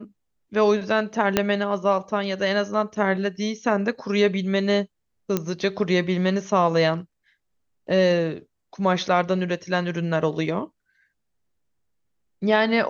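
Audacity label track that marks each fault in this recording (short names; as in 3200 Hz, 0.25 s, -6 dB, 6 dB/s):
1.370000	1.370000	pop -3 dBFS
5.370000	5.370000	pop -9 dBFS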